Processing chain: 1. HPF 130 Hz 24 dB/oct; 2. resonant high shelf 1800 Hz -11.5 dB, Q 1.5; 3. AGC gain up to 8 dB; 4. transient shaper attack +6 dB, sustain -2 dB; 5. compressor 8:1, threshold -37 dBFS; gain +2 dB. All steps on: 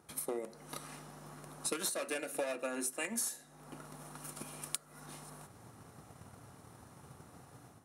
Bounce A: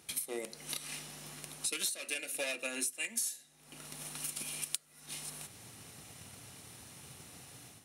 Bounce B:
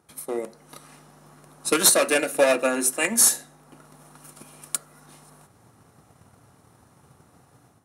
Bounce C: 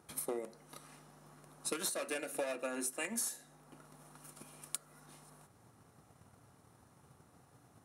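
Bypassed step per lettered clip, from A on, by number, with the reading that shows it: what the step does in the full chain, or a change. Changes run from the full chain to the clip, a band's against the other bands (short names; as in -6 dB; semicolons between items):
2, 4 kHz band +9.0 dB; 5, mean gain reduction 7.0 dB; 3, momentary loudness spread change +1 LU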